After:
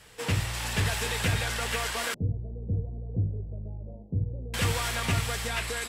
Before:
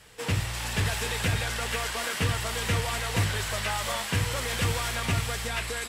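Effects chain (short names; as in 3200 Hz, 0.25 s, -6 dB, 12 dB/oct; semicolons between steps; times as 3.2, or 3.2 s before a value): 2.14–4.54 Gaussian blur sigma 22 samples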